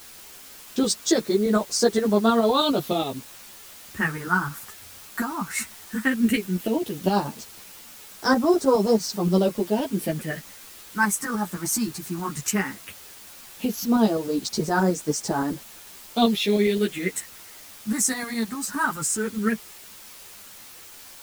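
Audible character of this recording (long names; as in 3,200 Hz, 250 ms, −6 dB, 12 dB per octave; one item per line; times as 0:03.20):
phaser sweep stages 4, 0.15 Hz, lowest notch 490–2,700 Hz
tremolo saw up 9.6 Hz, depth 50%
a quantiser's noise floor 8 bits, dither triangular
a shimmering, thickened sound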